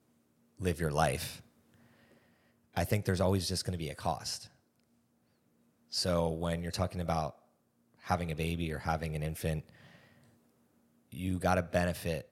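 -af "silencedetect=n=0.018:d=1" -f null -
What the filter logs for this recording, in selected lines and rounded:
silence_start: 1.30
silence_end: 2.77 | silence_duration: 1.47
silence_start: 4.37
silence_end: 5.94 | silence_duration: 1.57
silence_start: 9.59
silence_end: 11.15 | silence_duration: 1.56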